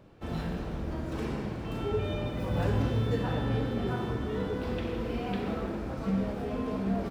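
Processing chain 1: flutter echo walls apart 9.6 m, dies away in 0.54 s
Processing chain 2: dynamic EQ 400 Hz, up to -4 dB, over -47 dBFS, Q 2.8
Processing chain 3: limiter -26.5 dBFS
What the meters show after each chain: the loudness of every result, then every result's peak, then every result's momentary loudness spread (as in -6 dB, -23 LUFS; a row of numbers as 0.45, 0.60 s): -31.0, -33.0, -35.5 LUFS; -15.0, -16.5, -26.5 dBFS; 7, 7, 2 LU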